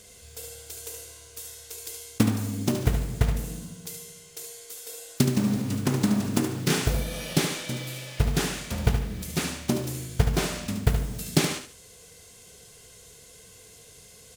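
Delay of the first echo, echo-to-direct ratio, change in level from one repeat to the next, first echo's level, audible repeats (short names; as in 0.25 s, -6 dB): 73 ms, -7.5 dB, -11.5 dB, -8.0 dB, 2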